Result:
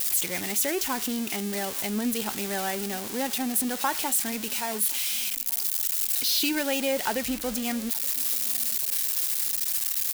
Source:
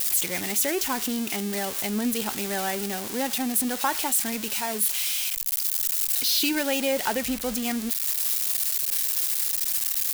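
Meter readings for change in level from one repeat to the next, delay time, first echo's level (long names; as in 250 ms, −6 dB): −9.5 dB, 873 ms, −23.0 dB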